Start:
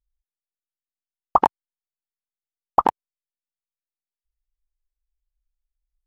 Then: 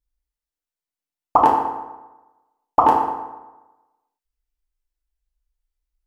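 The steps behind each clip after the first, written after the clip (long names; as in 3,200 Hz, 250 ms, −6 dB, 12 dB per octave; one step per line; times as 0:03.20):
feedback delay network reverb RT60 1.1 s, low-frequency decay 0.95×, high-frequency decay 0.65×, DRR −3 dB
level −1 dB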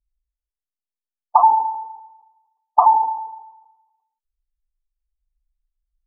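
expanding power law on the bin magnitudes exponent 3.3
level +2.5 dB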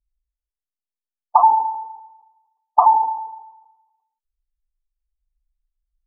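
no processing that can be heard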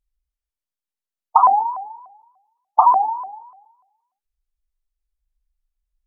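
pitch modulation by a square or saw wave saw up 3.4 Hz, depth 250 cents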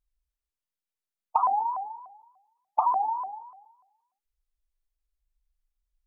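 downward compressor 3 to 1, threshold −20 dBFS, peak gain reduction 9.5 dB
level −3 dB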